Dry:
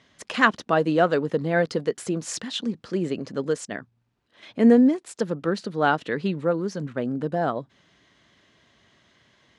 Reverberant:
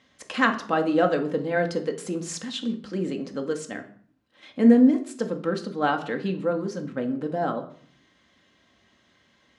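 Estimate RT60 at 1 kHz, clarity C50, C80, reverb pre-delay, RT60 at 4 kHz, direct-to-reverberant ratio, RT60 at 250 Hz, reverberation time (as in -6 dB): 0.55 s, 12.5 dB, 16.0 dB, 4 ms, 0.40 s, 4.0 dB, 0.75 s, 0.55 s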